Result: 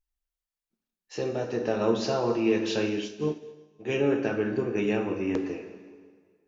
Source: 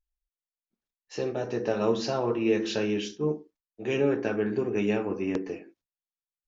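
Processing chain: plate-style reverb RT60 1.7 s, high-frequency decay 0.9×, DRR 6 dB; 2.89–3.89 s: upward expansion 1.5:1, over -47 dBFS

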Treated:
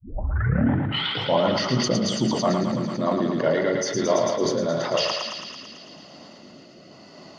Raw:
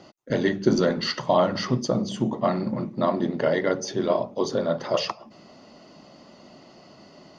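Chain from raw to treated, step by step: tape start-up on the opening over 1.44 s; high-pass 61 Hz; in parallel at +0.5 dB: peak limiter -19 dBFS, peak gain reduction 11 dB; on the sum: rotary cabinet horn 8 Hz, later 0.9 Hz, at 3.34 s; on a send: thinning echo 111 ms, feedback 76%, high-pass 690 Hz, level -4 dB; on the sum: decay stretcher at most 34 dB/s; trim -2.5 dB

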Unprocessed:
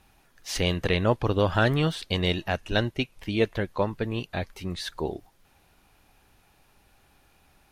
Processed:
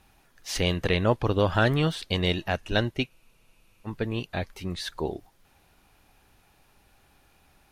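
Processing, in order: spectral freeze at 3.12 s, 0.75 s

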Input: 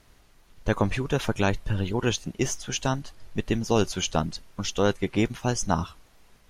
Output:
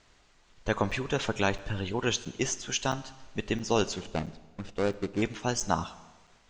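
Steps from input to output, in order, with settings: 3.96–5.22 s: median filter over 41 samples; elliptic low-pass 7.8 kHz, stop band 60 dB; bass shelf 300 Hz -7 dB; Schroeder reverb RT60 1.3 s, combs from 29 ms, DRR 16 dB; crackling interface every 0.67 s, samples 256, zero, from 0.91 s

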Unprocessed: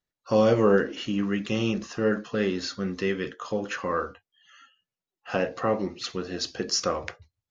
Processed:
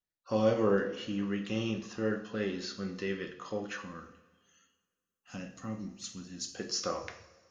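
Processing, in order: 3.81–6.53 s: FFT filter 260 Hz 0 dB, 400 Hz -18 dB, 4.6 kHz -4 dB, 6.9 kHz +9 dB; two-slope reverb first 0.54 s, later 1.9 s, from -16 dB, DRR 5.5 dB; trim -8.5 dB

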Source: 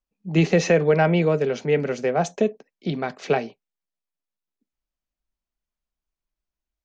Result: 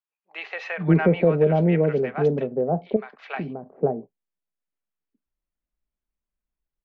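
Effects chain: 2.43–3.13 s: compression 4:1, threshold -29 dBFS, peak gain reduction 11 dB; distance through air 450 m; bands offset in time highs, lows 530 ms, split 840 Hz; trim +1.5 dB

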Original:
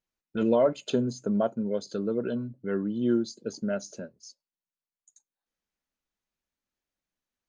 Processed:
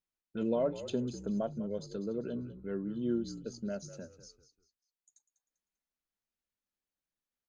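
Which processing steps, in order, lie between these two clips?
dynamic bell 1.5 kHz, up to -5 dB, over -43 dBFS, Q 0.7; on a send: frequency-shifting echo 197 ms, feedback 34%, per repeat -56 Hz, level -13 dB; on the sum: trim -7 dB

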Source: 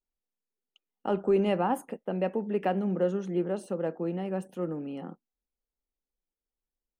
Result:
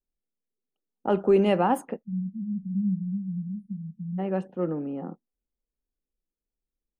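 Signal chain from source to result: spectral selection erased 2.03–4.19 s, 230–9000 Hz; level-controlled noise filter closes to 460 Hz, open at -23 dBFS; trim +4.5 dB

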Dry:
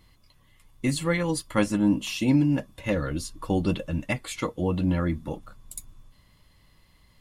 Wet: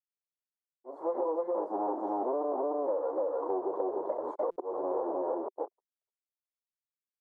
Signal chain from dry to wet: coarse spectral quantiser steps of 15 dB; bit crusher 6-bit; harmonic-percussive split percussive -10 dB; delay 300 ms -3.5 dB; waveshaping leveller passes 5; gate -22 dBFS, range -47 dB; slow attack 396 ms; elliptic band-pass 380–1000 Hz, stop band 50 dB; compression, threshold -29 dBFS, peak gain reduction 12 dB; buffer glitch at 4.51 s, samples 256, times 8

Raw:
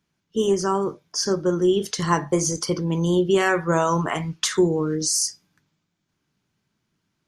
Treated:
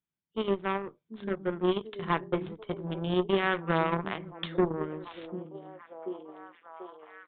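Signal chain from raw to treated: Chebyshev shaper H 6 -16 dB, 7 -19 dB, 8 -19 dB, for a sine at -5.5 dBFS; repeats whose band climbs or falls 739 ms, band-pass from 220 Hz, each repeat 0.7 oct, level -8 dB; resampled via 8 kHz; trim -7 dB

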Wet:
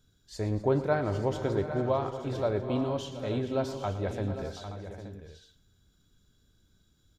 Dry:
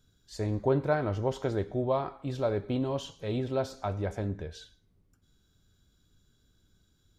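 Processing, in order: multi-tap echo 114/247/441/729/801/874 ms -15/-17/-16.5/-16.5/-11.5/-14 dB

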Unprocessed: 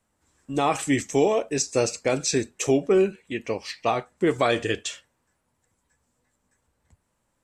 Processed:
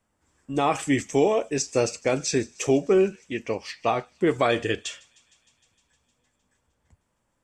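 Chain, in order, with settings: treble shelf 9.8 kHz -9.5 dB; band-stop 4 kHz, Q 12; feedback echo behind a high-pass 154 ms, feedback 76%, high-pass 4.2 kHz, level -20.5 dB

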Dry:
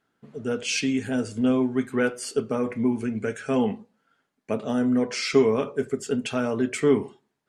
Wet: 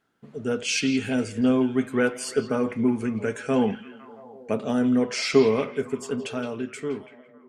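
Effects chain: fade out at the end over 2.09 s; repeats whose band climbs or falls 168 ms, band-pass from 3.3 kHz, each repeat -0.7 oct, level -8 dB; trim +1 dB

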